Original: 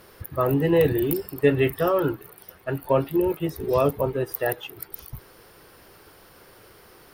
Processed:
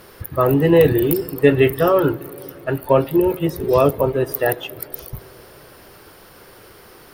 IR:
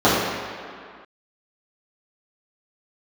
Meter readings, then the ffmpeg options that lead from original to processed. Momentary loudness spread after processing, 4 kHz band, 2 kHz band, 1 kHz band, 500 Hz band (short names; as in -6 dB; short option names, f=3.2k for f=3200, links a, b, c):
17 LU, +6.0 dB, +6.0 dB, +6.0 dB, +6.5 dB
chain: -filter_complex "[0:a]asplit=2[a][b];[1:a]atrim=start_sample=2205,asetrate=23373,aresample=44100[c];[b][c]afir=irnorm=-1:irlink=0,volume=-49dB[d];[a][d]amix=inputs=2:normalize=0,volume=6dB"